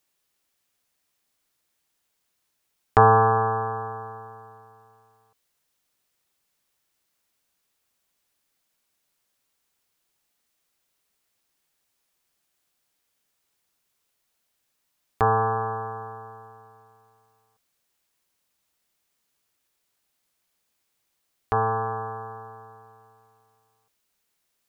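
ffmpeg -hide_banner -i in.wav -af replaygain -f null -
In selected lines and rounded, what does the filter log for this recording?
track_gain = +11.8 dB
track_peak = 0.585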